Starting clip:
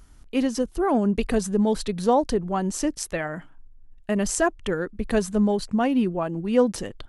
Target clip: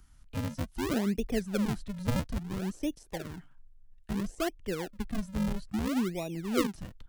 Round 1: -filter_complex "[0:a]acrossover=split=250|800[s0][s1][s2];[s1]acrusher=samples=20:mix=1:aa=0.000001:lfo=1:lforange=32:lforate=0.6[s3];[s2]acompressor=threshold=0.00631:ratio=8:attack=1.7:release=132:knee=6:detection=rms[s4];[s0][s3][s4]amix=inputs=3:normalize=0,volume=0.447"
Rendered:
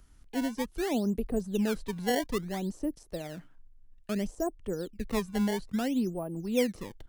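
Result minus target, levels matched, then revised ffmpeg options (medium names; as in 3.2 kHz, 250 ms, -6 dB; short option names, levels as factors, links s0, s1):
decimation with a swept rate: distortion -15 dB
-filter_complex "[0:a]acrossover=split=250|800[s0][s1][s2];[s1]acrusher=samples=67:mix=1:aa=0.000001:lfo=1:lforange=107:lforate=0.6[s3];[s2]acompressor=threshold=0.00631:ratio=8:attack=1.7:release=132:knee=6:detection=rms[s4];[s0][s3][s4]amix=inputs=3:normalize=0,volume=0.447"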